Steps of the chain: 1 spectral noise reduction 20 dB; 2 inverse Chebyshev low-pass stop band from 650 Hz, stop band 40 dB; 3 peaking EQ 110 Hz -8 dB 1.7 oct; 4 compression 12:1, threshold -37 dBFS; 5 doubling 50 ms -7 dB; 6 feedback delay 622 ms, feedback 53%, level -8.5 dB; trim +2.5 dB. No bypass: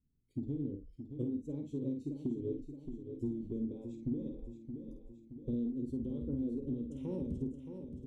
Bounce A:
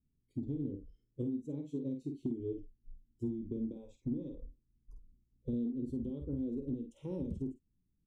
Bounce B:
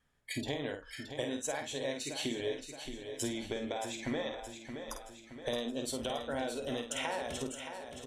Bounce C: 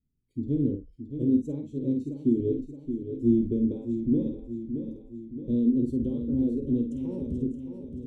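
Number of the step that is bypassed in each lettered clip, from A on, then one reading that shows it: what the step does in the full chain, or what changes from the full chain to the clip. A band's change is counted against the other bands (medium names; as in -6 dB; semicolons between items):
6, echo-to-direct -7.0 dB to none; 2, crest factor change +3.0 dB; 4, mean gain reduction 8.5 dB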